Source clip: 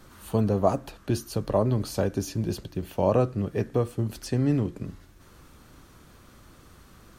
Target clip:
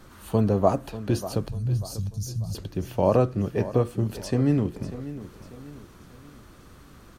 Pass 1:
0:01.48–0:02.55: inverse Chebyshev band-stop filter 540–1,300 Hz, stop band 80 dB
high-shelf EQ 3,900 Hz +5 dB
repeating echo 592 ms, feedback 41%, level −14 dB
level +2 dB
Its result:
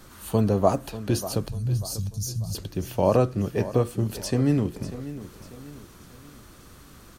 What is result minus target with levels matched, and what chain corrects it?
8,000 Hz band +6.0 dB
0:01.48–0:02.55: inverse Chebyshev band-stop filter 540–1,300 Hz, stop band 80 dB
high-shelf EQ 3,900 Hz −3 dB
repeating echo 592 ms, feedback 41%, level −14 dB
level +2 dB

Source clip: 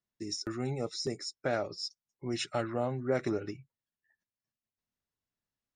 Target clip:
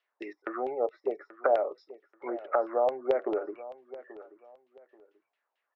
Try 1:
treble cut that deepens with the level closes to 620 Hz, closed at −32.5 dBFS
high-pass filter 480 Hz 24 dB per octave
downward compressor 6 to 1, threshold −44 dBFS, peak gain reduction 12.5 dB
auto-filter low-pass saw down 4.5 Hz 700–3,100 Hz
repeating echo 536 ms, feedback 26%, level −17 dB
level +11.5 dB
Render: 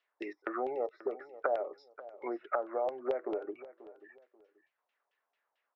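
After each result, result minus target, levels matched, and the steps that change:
downward compressor: peak gain reduction +7.5 dB; echo 297 ms early
change: downward compressor 6 to 1, threshold −35 dBFS, peak gain reduction 5 dB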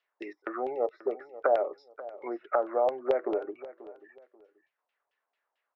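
echo 297 ms early
change: repeating echo 833 ms, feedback 26%, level −17 dB

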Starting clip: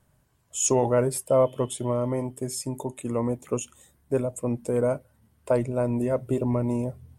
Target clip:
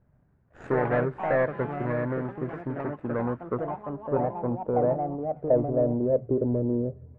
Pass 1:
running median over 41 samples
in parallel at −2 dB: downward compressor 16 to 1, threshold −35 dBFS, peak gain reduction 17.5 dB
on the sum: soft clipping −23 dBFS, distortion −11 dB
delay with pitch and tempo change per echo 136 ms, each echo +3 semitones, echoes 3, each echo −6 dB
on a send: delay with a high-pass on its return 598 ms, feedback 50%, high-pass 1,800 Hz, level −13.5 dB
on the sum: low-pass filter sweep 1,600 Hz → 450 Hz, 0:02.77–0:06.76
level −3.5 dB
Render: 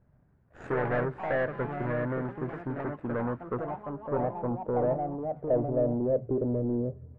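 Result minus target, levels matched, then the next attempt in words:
soft clipping: distortion +13 dB
running median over 41 samples
in parallel at −2 dB: downward compressor 16 to 1, threshold −35 dBFS, peak gain reduction 17.5 dB
on the sum: soft clipping −13 dBFS, distortion −25 dB
delay with pitch and tempo change per echo 136 ms, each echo +3 semitones, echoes 3, each echo −6 dB
on a send: delay with a high-pass on its return 598 ms, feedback 50%, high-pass 1,800 Hz, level −13.5 dB
on the sum: low-pass filter sweep 1,600 Hz → 450 Hz, 0:02.77–0:06.76
level −3.5 dB

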